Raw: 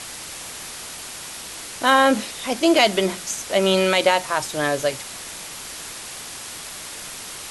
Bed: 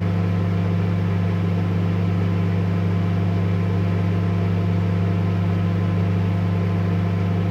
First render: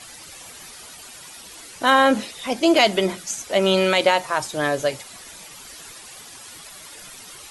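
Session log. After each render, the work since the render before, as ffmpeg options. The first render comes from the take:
-af "afftdn=nr=11:nf=-36"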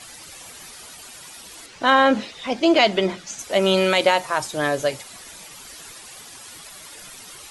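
-filter_complex "[0:a]asettb=1/sr,asplit=3[s0][s1][s2];[s0]atrim=end=1.664[s3];[s1]atrim=start=1.66:end=3.39,asetpts=PTS-STARTPTS,afade=t=in:d=0.004:c=qsin,afade=t=out:st=1.726:d=0.004:c=qsin,lowpass=5200[s4];[s2]atrim=start=3.386[s5];[s3][s4]acrossfade=d=0.004:c1=hsin:c2=qsin[s6];[s6][s5]acrossfade=d=0.004:c1=qsin:c2=hsin"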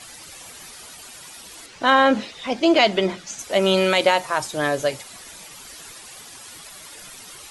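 -af anull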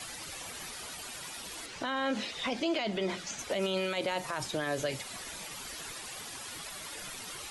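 -filter_complex "[0:a]acrossover=split=360|1700|4300[s0][s1][s2][s3];[s0]acompressor=threshold=0.0224:ratio=4[s4];[s1]acompressor=threshold=0.0316:ratio=4[s5];[s2]acompressor=threshold=0.0251:ratio=4[s6];[s3]acompressor=threshold=0.00631:ratio=4[s7];[s4][s5][s6][s7]amix=inputs=4:normalize=0,alimiter=limit=0.0708:level=0:latency=1:release=42"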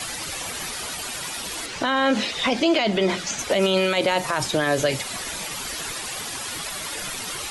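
-af "volume=3.76"

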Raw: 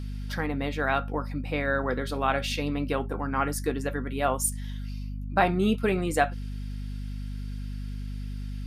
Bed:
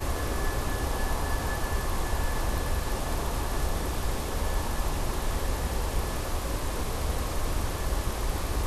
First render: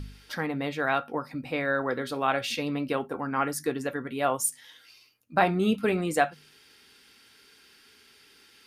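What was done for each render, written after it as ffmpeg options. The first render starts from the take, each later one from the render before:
-af "bandreject=f=50:t=h:w=4,bandreject=f=100:t=h:w=4,bandreject=f=150:t=h:w=4,bandreject=f=200:t=h:w=4,bandreject=f=250:t=h:w=4"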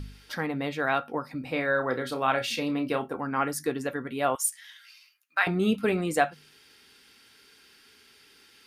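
-filter_complex "[0:a]asettb=1/sr,asplit=3[s0][s1][s2];[s0]atrim=end=1.384[s3];[s1]atrim=start=1.38:end=3.11,asetpts=PTS-STARTPTS,afade=t=in:d=0.004:c=qsin,afade=t=out:st=1.726:d=0.004:c=qsin,asplit=2[s4][s5];[s5]adelay=31,volume=0.376[s6];[s4][s6]amix=inputs=2:normalize=0,atrim=end_sample=76293[s7];[s2]atrim=start=3.106[s8];[s3][s7]acrossfade=d=0.004:c1=hsin:c2=qsin[s9];[s9][s8]acrossfade=d=0.004:c1=qsin:c2=hsin,asettb=1/sr,asplit=3[s10][s11][s12];[s10]atrim=end=4.354[s13];[s11]atrim=start=4.35:end=5.47,asetpts=PTS-STARTPTS,afade=t=in:d=0.004:c=qsin,afade=t=out:st=1.116:d=0.004:c=qsin,highpass=f=1600:t=q:w=1.6[s14];[s12]atrim=start=5.466[s15];[s13][s14]acrossfade=d=0.004:c1=hsin:c2=qsin[s16];[s16][s15]acrossfade=d=0.004:c1=qsin:c2=hsin"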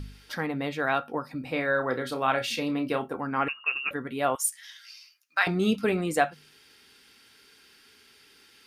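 -filter_complex "[0:a]asettb=1/sr,asplit=3[s0][s1][s2];[s0]atrim=end=0.924[s3];[s1]atrim=start=0.92:end=1.44,asetpts=PTS-STARTPTS,afade=t=in:d=0.004:c=qsin,afade=t=out:st=0.516:d=0.004:c=qsin,bandreject=f=2100:w=10[s4];[s2]atrim=start=1.436[s5];[s3][s4]acrossfade=d=0.004:c1=hsin:c2=qsin[s6];[s6][s5]acrossfade=d=0.004:c1=qsin:c2=hsin,asettb=1/sr,asplit=3[s7][s8][s9];[s7]atrim=end=3.484[s10];[s8]atrim=start=3.48:end=3.91,asetpts=PTS-STARTPTS,afade=t=in:d=0.004:c=qsin,afade=t=out:st=0.426:d=0.004:c=qsin,lowpass=f=2600:t=q:w=0.5098,lowpass=f=2600:t=q:w=0.6013,lowpass=f=2600:t=q:w=0.9,lowpass=f=2600:t=q:w=2.563,afreqshift=-3000[s11];[s9]atrim=start=3.906[s12];[s10][s11]acrossfade=d=0.004:c1=hsin:c2=qsin[s13];[s13][s12]acrossfade=d=0.004:c1=qsin:c2=hsin,asettb=1/sr,asplit=3[s14][s15][s16];[s14]atrim=end=4.634[s17];[s15]atrim=start=4.63:end=5.84,asetpts=PTS-STARTPTS,afade=t=in:d=0.004:c=qsin,afade=t=out:st=1.206:d=0.004:c=qsin,equalizer=f=5400:t=o:w=0.69:g=10[s18];[s16]atrim=start=5.836[s19];[s17][s18]acrossfade=d=0.004:c1=hsin:c2=qsin[s20];[s20][s19]acrossfade=d=0.004:c1=qsin:c2=hsin"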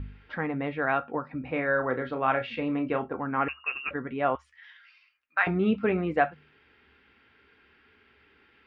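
-af "lowpass=f=2500:w=0.5412,lowpass=f=2500:w=1.3066,equalizer=f=72:t=o:w=0.3:g=15"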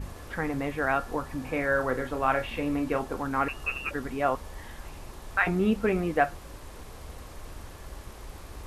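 -filter_complex "[1:a]volume=0.211[s0];[0:a][s0]amix=inputs=2:normalize=0"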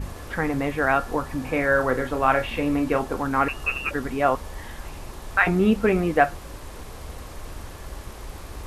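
-af "volume=1.88"

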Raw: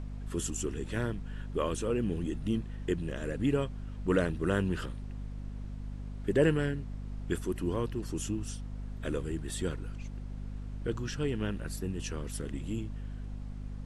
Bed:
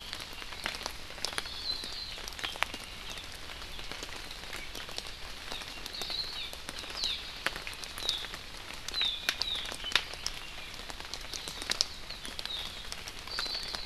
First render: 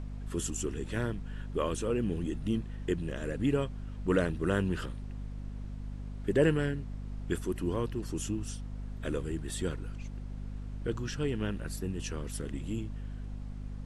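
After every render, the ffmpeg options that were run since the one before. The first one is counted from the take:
-af anull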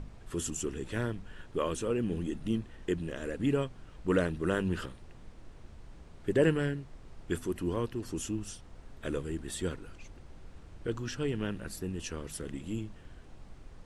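-af "bandreject=f=50:t=h:w=4,bandreject=f=100:t=h:w=4,bandreject=f=150:t=h:w=4,bandreject=f=200:t=h:w=4,bandreject=f=250:t=h:w=4"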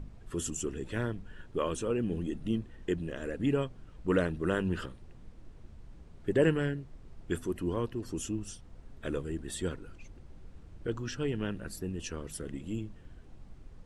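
-af "afftdn=nr=6:nf=-52"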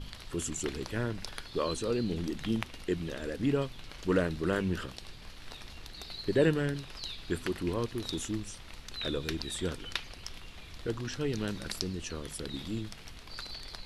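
-filter_complex "[1:a]volume=0.398[s0];[0:a][s0]amix=inputs=2:normalize=0"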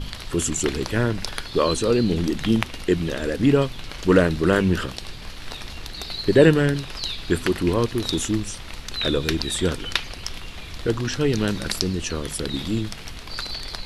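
-af "volume=3.76,alimiter=limit=0.794:level=0:latency=1"

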